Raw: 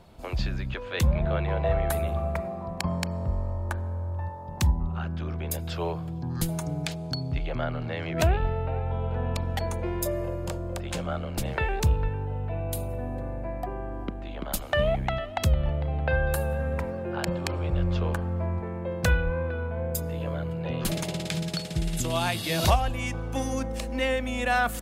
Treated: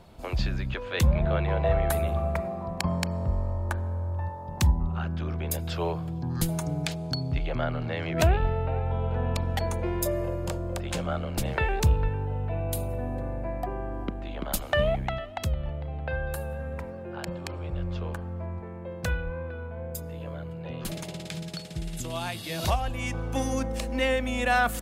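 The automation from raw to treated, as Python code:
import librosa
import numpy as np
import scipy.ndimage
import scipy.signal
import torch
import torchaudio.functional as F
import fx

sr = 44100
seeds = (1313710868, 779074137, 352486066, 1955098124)

y = fx.gain(x, sr, db=fx.line((14.69, 1.0), (15.55, -6.0), (22.58, -6.0), (23.2, 1.0)))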